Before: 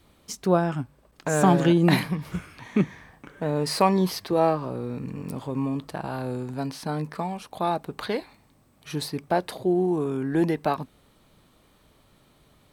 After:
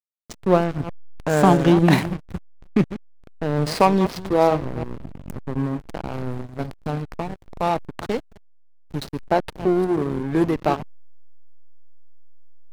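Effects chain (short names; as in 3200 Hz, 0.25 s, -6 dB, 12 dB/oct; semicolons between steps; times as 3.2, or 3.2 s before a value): reverse delay 0.179 s, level -11 dB; dynamic EQ 180 Hz, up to -3 dB, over -35 dBFS, Q 5.5; backlash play -23 dBFS; gain +5 dB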